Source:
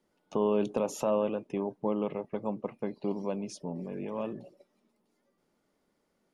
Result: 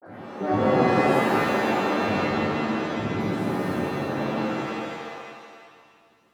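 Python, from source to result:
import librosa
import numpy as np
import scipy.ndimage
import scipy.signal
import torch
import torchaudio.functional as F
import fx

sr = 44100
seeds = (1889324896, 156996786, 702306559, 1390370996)

p1 = fx.spec_steps(x, sr, hold_ms=400)
p2 = scipy.signal.sosfilt(scipy.signal.butter(2, 59.0, 'highpass', fs=sr, output='sos'), p1)
p3 = fx.peak_eq(p2, sr, hz=3300.0, db=-12.5, octaves=0.81)
p4 = fx.dispersion(p3, sr, late='highs', ms=80.0, hz=2400.0)
p5 = fx.granulator(p4, sr, seeds[0], grain_ms=100.0, per_s=20.0, spray_ms=100.0, spread_st=12)
p6 = p5 + fx.echo_single(p5, sr, ms=359, db=-9.0, dry=0)
y = fx.rev_shimmer(p6, sr, seeds[1], rt60_s=1.7, semitones=7, shimmer_db=-2, drr_db=-8.5)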